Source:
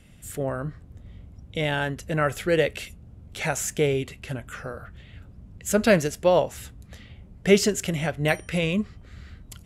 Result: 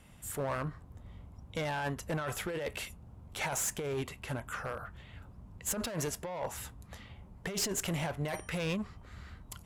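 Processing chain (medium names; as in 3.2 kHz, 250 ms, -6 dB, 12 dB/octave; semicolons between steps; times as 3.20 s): peaking EQ 970 Hz +12.5 dB 0.9 oct; saturation -13 dBFS, distortion -12 dB; compressor with a negative ratio -25 dBFS, ratio -1; treble shelf 8.4 kHz +7 dB; one-sided clip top -23 dBFS; trim -8.5 dB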